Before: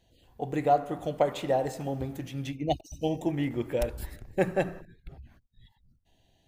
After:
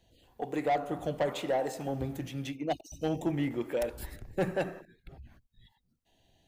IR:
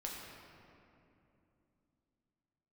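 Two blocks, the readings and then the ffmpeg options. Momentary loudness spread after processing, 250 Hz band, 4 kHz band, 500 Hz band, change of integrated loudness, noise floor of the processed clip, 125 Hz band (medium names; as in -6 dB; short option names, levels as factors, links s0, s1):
8 LU, -2.0 dB, -1.5 dB, -3.5 dB, -3.0 dB, -74 dBFS, -3.5 dB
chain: -filter_complex "[0:a]acrossover=split=200[s0][s1];[s0]tremolo=f=0.93:d=0.88[s2];[s1]asoftclip=type=tanh:threshold=0.0708[s3];[s2][s3]amix=inputs=2:normalize=0"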